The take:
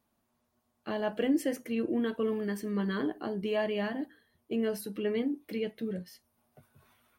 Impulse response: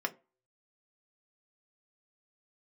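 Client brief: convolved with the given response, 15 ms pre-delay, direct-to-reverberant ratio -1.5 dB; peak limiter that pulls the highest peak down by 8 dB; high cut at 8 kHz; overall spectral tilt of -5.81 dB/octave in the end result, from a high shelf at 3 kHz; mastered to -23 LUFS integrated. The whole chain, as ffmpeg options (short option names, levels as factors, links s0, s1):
-filter_complex "[0:a]lowpass=8000,highshelf=f=3000:g=-6.5,alimiter=level_in=1.33:limit=0.0631:level=0:latency=1,volume=0.75,asplit=2[s0][s1];[1:a]atrim=start_sample=2205,adelay=15[s2];[s1][s2]afir=irnorm=-1:irlink=0,volume=0.668[s3];[s0][s3]amix=inputs=2:normalize=0,volume=2.82"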